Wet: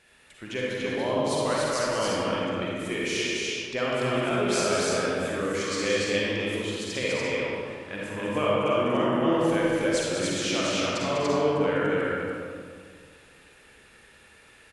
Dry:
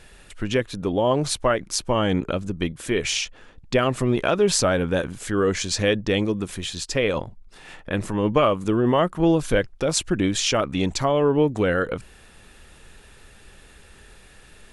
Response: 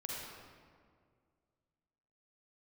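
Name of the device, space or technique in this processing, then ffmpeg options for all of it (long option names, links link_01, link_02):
stadium PA: -filter_complex "[0:a]highpass=frequency=220:poles=1,equalizer=frequency=2200:width_type=o:width=0.79:gain=5,aecho=1:1:198.3|288.6:0.447|0.794[link_01];[1:a]atrim=start_sample=2205[link_02];[link_01][link_02]afir=irnorm=-1:irlink=0,volume=-6.5dB"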